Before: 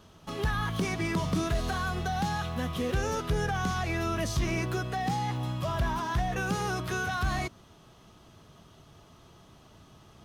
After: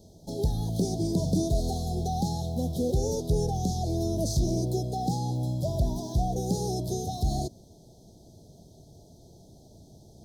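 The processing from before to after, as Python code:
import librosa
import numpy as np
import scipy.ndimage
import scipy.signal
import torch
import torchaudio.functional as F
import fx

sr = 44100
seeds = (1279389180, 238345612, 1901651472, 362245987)

y = scipy.signal.sosfilt(scipy.signal.cheby2(4, 40, [1100.0, 2800.0], 'bandstop', fs=sr, output='sos'), x)
y = y * librosa.db_to_amplitude(3.5)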